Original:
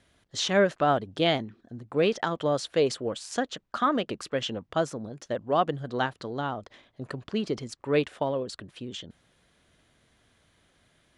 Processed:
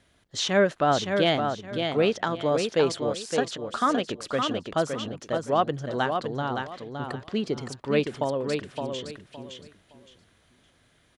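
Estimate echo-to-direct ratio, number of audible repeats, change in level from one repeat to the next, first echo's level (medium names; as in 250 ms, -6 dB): -5.0 dB, 3, -12.5 dB, -5.5 dB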